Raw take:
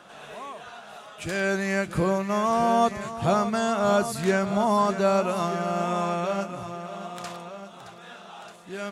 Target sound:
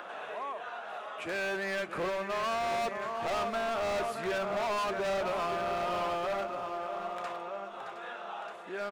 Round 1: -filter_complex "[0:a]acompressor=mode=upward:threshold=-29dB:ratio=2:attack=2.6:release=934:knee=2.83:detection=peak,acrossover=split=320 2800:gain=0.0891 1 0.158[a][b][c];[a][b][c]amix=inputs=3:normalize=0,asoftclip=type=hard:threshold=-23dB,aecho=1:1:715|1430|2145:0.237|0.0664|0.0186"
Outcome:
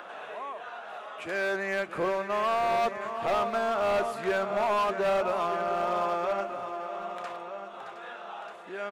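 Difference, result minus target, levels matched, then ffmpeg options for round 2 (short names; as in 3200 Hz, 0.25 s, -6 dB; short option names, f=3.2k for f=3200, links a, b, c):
hard clip: distortion -5 dB
-filter_complex "[0:a]acompressor=mode=upward:threshold=-29dB:ratio=2:attack=2.6:release=934:knee=2.83:detection=peak,acrossover=split=320 2800:gain=0.0891 1 0.158[a][b][c];[a][b][c]amix=inputs=3:normalize=0,asoftclip=type=hard:threshold=-30dB,aecho=1:1:715|1430|2145:0.237|0.0664|0.0186"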